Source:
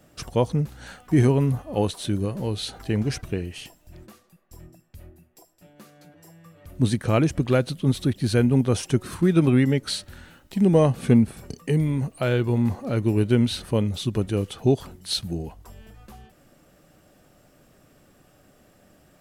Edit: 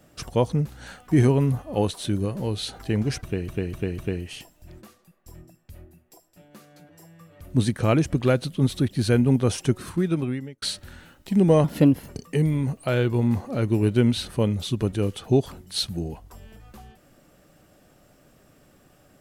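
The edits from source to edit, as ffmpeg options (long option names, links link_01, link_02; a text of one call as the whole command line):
ffmpeg -i in.wav -filter_complex "[0:a]asplit=7[link_01][link_02][link_03][link_04][link_05][link_06][link_07];[link_01]atrim=end=3.482[link_08];[link_02]atrim=start=3.228:end=3.482[link_09];[link_03]atrim=start=3.228:end=3.482[link_10];[link_04]atrim=start=3.228:end=9.87,asetpts=PTS-STARTPTS,afade=type=out:start_time=5.692:duration=0.95[link_11];[link_05]atrim=start=9.87:end=10.894,asetpts=PTS-STARTPTS,afade=type=in:duration=0.004:curve=hsin[link_12];[link_06]atrim=start=10.89:end=11.43,asetpts=PTS-STARTPTS,asetrate=53361,aresample=44100[link_13];[link_07]atrim=start=11.426[link_14];[link_08][link_09]acrossfade=duration=0.004:curve1=hsin:curve2=hsin[link_15];[link_15][link_10]acrossfade=duration=0.004:curve1=hsin:curve2=hsin[link_16];[link_11][link_12]concat=n=2:v=0:a=1[link_17];[link_16][link_17]acrossfade=duration=0.004:curve1=hsin:curve2=hsin[link_18];[link_18][link_13]acrossfade=duration=0.004:curve1=hsin:curve2=hsin[link_19];[link_19][link_14]acrossfade=duration=0.004:curve1=hsin:curve2=hsin" out.wav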